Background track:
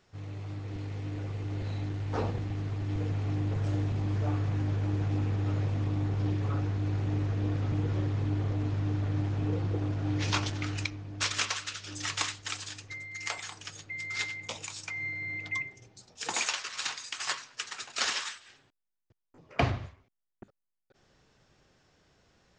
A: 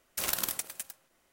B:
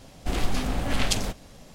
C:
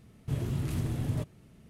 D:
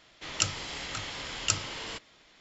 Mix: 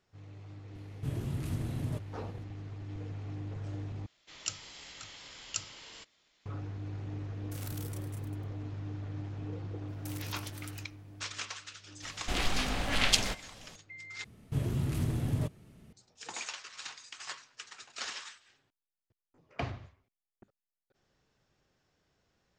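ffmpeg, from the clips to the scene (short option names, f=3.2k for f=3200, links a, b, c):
-filter_complex "[3:a]asplit=2[a][b];[1:a]asplit=2[c][d];[0:a]volume=-9.5dB[e];[a]aresample=32000,aresample=44100[f];[4:a]highshelf=f=3k:g=8.5[g];[c]aecho=1:1:32.07|192.4:0.708|0.316[h];[d]acompressor=threshold=-40dB:ratio=6:attack=3.2:release=140:knee=1:detection=peak[i];[2:a]equalizer=f=3k:w=0.34:g=10[j];[e]asplit=3[k][l][m];[k]atrim=end=4.064[n];[g]atrim=end=2.4,asetpts=PTS-STARTPTS,volume=-15dB[o];[l]atrim=start=6.456:end=14.244[p];[b]atrim=end=1.69[q];[m]atrim=start=15.926[r];[f]atrim=end=1.69,asetpts=PTS-STARTPTS,volume=-4dB,afade=t=in:d=0.004:c=hsin,afade=t=out:st=1.686:d=0.004:c=hsin,adelay=750[s];[h]atrim=end=1.32,asetpts=PTS-STARTPTS,volume=-18dB,afade=t=in:d=0.004:c=hsin,afade=t=out:st=1.316:d=0.004:c=hsin,adelay=7340[t];[i]atrim=end=1.32,asetpts=PTS-STARTPTS,volume=-4.5dB,afade=t=in:d=0.004:c=hsin,afade=t=out:st=1.316:d=0.004:c=hsin,adelay=9880[u];[j]atrim=end=1.74,asetpts=PTS-STARTPTS,volume=-7.5dB,afade=t=in:d=0.004:c=hsin,afade=t=out:st=1.736:d=0.004:c=hsin,adelay=12020[v];[n][o]acrossfade=d=0.004:c1=hsin:c2=hsin[w];[w][p]acrossfade=d=0.004:c1=hsin:c2=hsin[x];[x][q]acrossfade=d=0.004:c1=hsin:c2=hsin[y];[y][r]acrossfade=d=0.004:c1=hsin:c2=hsin[z];[z][s][t][u][v]amix=inputs=5:normalize=0"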